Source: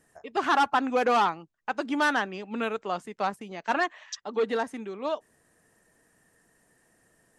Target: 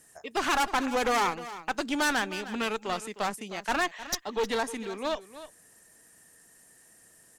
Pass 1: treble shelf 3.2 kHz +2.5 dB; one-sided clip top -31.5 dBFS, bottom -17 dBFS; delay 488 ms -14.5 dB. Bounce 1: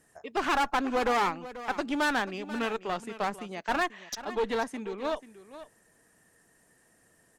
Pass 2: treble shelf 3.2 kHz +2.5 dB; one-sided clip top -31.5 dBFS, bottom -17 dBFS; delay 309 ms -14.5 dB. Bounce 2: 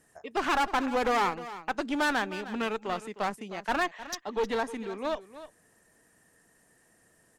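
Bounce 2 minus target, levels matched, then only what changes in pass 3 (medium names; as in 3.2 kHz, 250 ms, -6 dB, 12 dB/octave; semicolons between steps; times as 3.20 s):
8 kHz band -7.0 dB
change: treble shelf 3.2 kHz +14 dB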